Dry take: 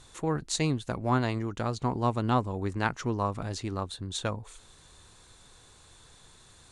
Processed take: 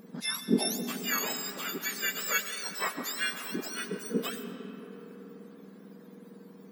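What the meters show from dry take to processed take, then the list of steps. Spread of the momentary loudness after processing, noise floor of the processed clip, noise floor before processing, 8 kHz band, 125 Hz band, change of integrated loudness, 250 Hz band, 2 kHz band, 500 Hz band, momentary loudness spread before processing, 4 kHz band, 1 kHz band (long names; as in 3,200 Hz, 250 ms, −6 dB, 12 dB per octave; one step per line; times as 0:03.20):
22 LU, −51 dBFS, −56 dBFS, +5.5 dB, −14.5 dB, −1.0 dB, −2.5 dB, +5.5 dB, −4.5 dB, 7 LU, +4.5 dB, −8.0 dB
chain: frequency axis turned over on the octave scale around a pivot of 1,300 Hz
comb and all-pass reverb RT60 4.7 s, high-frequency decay 0.4×, pre-delay 60 ms, DRR 8 dB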